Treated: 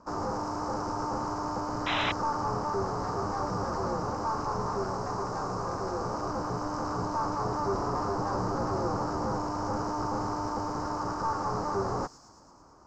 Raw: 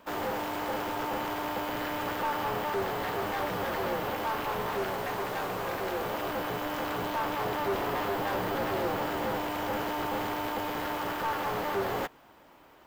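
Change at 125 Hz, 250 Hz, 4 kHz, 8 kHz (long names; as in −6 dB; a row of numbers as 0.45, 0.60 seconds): +6.0, +2.0, −2.0, +1.0 decibels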